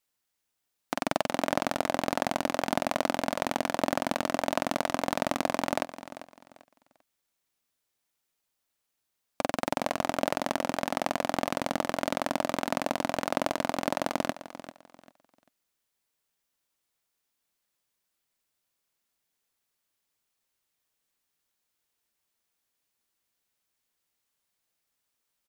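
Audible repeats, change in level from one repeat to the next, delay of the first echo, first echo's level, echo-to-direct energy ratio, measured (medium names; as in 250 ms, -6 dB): 2, -11.5 dB, 394 ms, -14.0 dB, -13.5 dB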